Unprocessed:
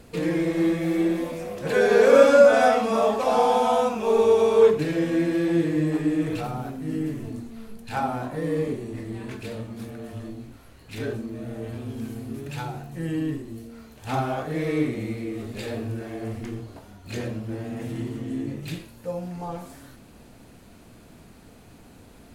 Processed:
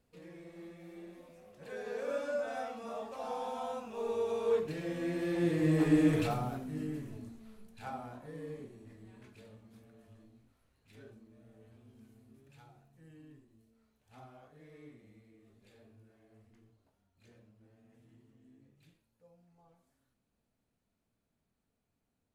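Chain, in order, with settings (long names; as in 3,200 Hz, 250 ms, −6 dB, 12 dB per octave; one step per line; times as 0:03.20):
source passing by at 0:06.01, 8 m/s, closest 2.5 metres
parametric band 330 Hz −3.5 dB 0.29 octaves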